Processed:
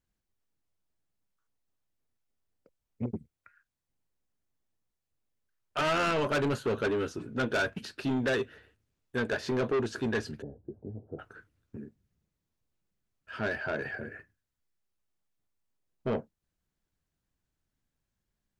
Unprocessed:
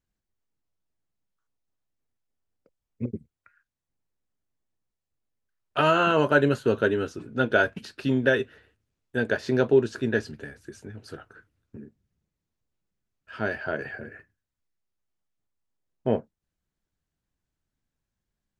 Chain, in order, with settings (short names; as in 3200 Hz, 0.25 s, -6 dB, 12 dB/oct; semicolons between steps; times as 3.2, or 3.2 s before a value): soft clip -24.5 dBFS, distortion -6 dB; 10.42–11.19 steep low-pass 780 Hz 36 dB/oct